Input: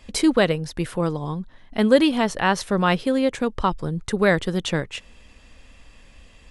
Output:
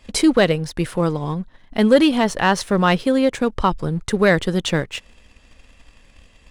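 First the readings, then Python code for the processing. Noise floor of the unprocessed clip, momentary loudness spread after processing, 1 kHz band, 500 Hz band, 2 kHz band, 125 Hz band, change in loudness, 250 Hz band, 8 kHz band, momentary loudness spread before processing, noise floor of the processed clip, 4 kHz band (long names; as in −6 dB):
−51 dBFS, 11 LU, +3.0 dB, +3.0 dB, +3.0 dB, +3.5 dB, +3.0 dB, +3.5 dB, +3.5 dB, 12 LU, −52 dBFS, +3.0 dB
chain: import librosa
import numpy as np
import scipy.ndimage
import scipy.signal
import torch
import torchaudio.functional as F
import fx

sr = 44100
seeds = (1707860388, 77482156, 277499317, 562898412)

y = fx.leveller(x, sr, passes=1)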